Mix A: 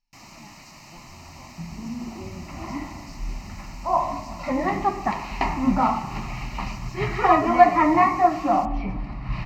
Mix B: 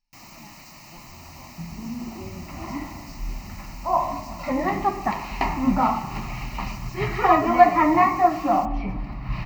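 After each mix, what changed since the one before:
master: remove LPF 10000 Hz 12 dB/oct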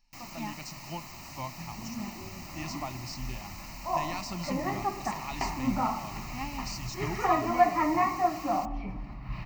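speech +10.5 dB; second sound -8.5 dB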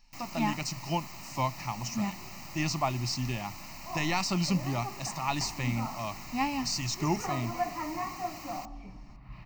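speech +8.5 dB; second sound -9.5 dB

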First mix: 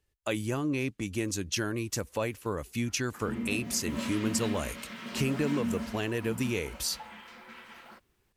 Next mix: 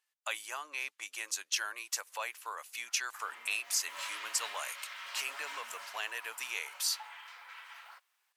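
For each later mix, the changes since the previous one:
master: add HPF 840 Hz 24 dB/oct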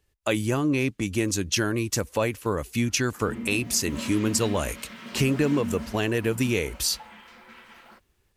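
speech +6.5 dB; master: remove HPF 840 Hz 24 dB/oct

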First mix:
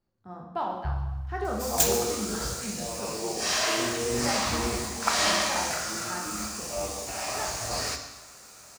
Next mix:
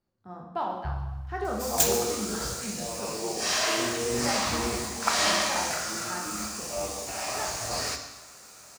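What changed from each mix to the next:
master: add low shelf 62 Hz -6.5 dB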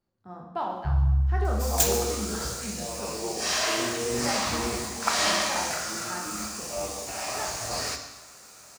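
first sound: send on

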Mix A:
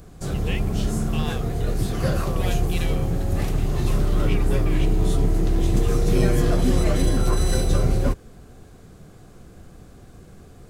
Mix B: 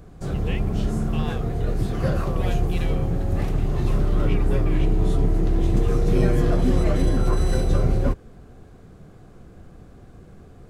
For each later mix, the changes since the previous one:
master: add high shelf 3600 Hz -11 dB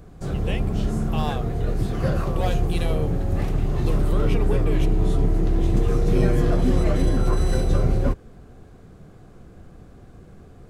speech: remove band-pass 2100 Hz, Q 1.2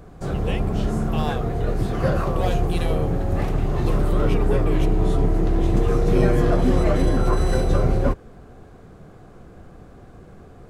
background: add bell 880 Hz +5.5 dB 2.7 oct

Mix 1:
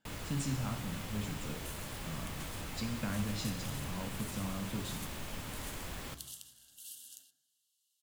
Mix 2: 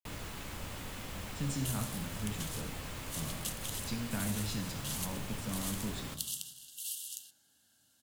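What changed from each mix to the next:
speech: entry +1.10 s; second sound +9.0 dB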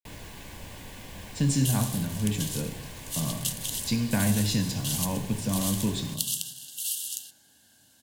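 speech +11.5 dB; second sound +9.0 dB; master: add Butterworth band-stop 1300 Hz, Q 4.9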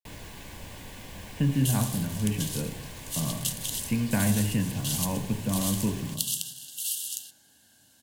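speech: add brick-wall FIR low-pass 3100 Hz

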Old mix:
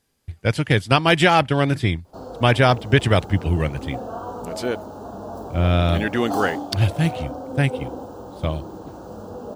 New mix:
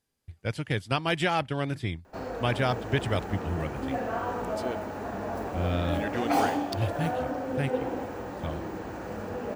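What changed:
speech -11.0 dB; background: remove Butterworth band-stop 2100 Hz, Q 0.95

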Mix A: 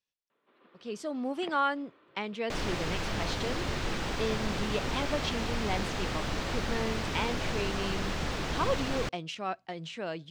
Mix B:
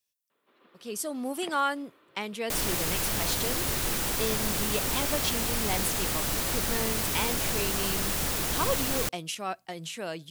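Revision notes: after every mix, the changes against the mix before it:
master: remove air absorption 160 m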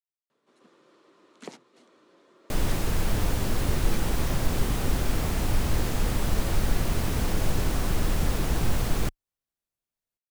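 speech: muted; first sound: remove LPF 3300 Hz 24 dB/oct; master: add tilt -2.5 dB/oct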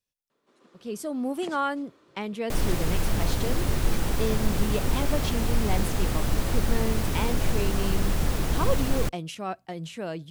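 speech: unmuted

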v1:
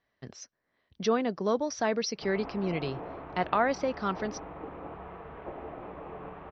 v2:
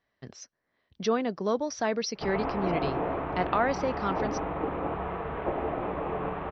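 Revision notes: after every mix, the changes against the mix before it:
background +10.5 dB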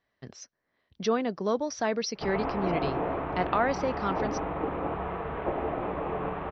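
none

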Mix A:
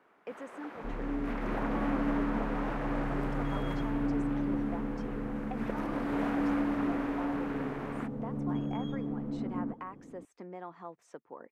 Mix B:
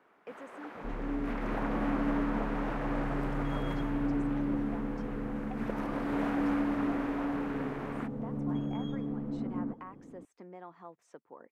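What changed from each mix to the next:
speech -4.0 dB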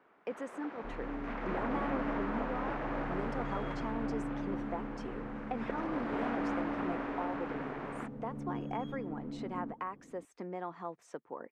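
speech +7.5 dB; first sound: add air absorption 110 m; second sound -6.5 dB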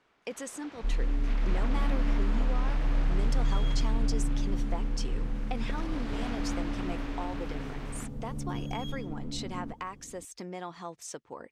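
first sound -5.5 dB; master: remove three-band isolator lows -19 dB, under 160 Hz, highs -21 dB, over 2000 Hz

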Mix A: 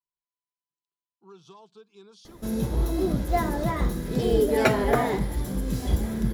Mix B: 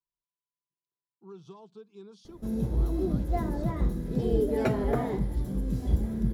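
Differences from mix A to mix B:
background -7.5 dB; master: add tilt shelf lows +6.5 dB, about 640 Hz

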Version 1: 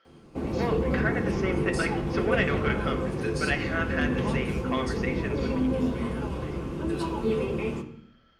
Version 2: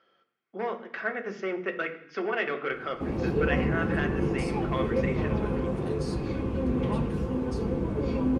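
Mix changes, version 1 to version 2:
background: entry +2.65 s; master: add high shelf 2800 Hz -8.5 dB

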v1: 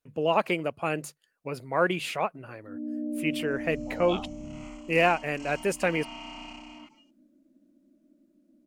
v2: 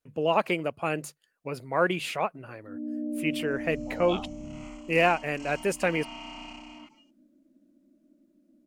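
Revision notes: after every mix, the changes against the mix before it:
none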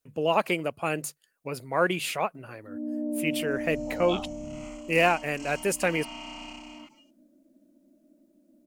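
first sound: remove running mean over 46 samples; master: add high shelf 6400 Hz +10 dB

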